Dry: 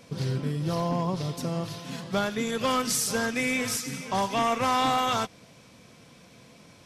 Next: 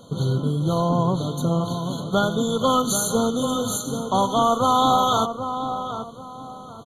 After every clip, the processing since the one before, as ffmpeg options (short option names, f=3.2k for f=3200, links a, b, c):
-filter_complex "[0:a]asplit=2[a][b];[b]adelay=782,lowpass=f=1.7k:p=1,volume=-8dB,asplit=2[c][d];[d]adelay=782,lowpass=f=1.7k:p=1,volume=0.32,asplit=2[e][f];[f]adelay=782,lowpass=f=1.7k:p=1,volume=0.32,asplit=2[g][h];[h]adelay=782,lowpass=f=1.7k:p=1,volume=0.32[i];[a][c][e][g][i]amix=inputs=5:normalize=0,afftfilt=real='re*eq(mod(floor(b*sr/1024/1500),2),0)':imag='im*eq(mod(floor(b*sr/1024/1500),2),0)':win_size=1024:overlap=0.75,volume=6.5dB"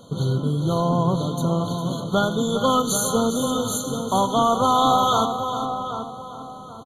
-af "aecho=1:1:405:0.299"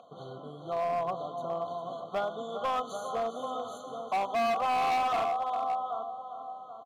-filter_complex "[0:a]acompressor=mode=upward:threshold=-41dB:ratio=2.5,asplit=3[a][b][c];[a]bandpass=f=730:t=q:w=8,volume=0dB[d];[b]bandpass=f=1.09k:t=q:w=8,volume=-6dB[e];[c]bandpass=f=2.44k:t=q:w=8,volume=-9dB[f];[d][e][f]amix=inputs=3:normalize=0,volume=27dB,asoftclip=hard,volume=-27dB,volume=1.5dB"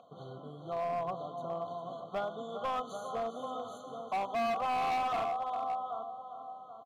-af "bass=f=250:g=4,treble=f=4k:g=-2,volume=-4dB"